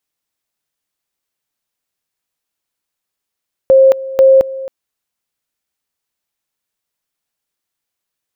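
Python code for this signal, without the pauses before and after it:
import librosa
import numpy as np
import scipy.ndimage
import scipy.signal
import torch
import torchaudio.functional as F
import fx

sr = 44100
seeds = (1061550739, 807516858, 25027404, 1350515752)

y = fx.two_level_tone(sr, hz=533.0, level_db=-3.5, drop_db=17.5, high_s=0.22, low_s=0.27, rounds=2)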